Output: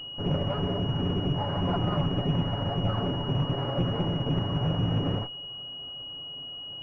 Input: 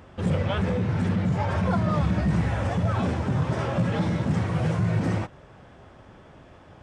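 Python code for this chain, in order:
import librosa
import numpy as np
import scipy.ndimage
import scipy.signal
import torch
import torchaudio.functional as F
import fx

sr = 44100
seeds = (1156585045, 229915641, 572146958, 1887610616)

y = fx.lower_of_two(x, sr, delay_ms=7.1)
y = fx.pwm(y, sr, carrier_hz=2900.0)
y = y * 10.0 ** (-1.5 / 20.0)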